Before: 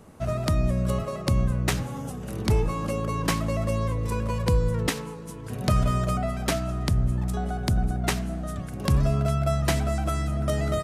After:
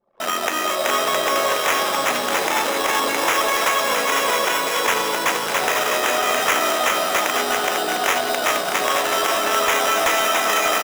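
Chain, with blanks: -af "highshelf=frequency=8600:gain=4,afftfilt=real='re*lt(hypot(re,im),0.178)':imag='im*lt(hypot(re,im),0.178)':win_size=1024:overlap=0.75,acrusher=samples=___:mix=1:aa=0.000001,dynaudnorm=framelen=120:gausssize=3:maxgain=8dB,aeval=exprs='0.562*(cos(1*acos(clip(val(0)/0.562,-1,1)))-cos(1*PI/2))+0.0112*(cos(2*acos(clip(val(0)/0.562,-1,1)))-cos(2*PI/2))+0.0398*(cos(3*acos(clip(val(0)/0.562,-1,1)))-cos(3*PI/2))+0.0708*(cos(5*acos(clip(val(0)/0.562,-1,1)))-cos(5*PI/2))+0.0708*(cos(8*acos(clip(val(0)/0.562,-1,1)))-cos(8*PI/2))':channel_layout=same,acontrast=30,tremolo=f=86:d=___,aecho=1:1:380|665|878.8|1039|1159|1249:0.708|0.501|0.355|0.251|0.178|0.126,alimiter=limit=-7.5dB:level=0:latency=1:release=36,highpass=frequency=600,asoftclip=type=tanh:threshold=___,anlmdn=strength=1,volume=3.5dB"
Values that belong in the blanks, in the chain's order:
10, 0.462, -12dB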